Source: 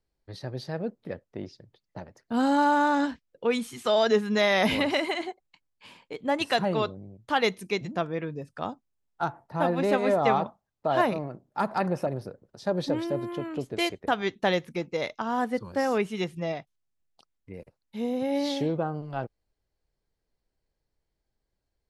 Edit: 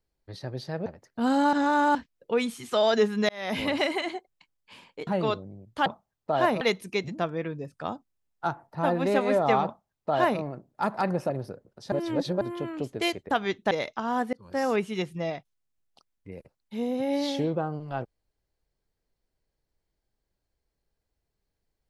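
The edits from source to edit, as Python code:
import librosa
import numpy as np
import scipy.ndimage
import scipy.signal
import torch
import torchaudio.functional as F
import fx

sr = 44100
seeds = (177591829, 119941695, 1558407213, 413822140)

y = fx.edit(x, sr, fx.cut(start_s=0.86, length_s=1.13),
    fx.reverse_span(start_s=2.66, length_s=0.42),
    fx.fade_in_span(start_s=4.42, length_s=0.49),
    fx.cut(start_s=6.2, length_s=0.39),
    fx.duplicate(start_s=10.42, length_s=0.75, to_s=7.38),
    fx.reverse_span(start_s=12.69, length_s=0.49),
    fx.cut(start_s=14.48, length_s=0.45),
    fx.fade_in_span(start_s=15.55, length_s=0.31), tone=tone)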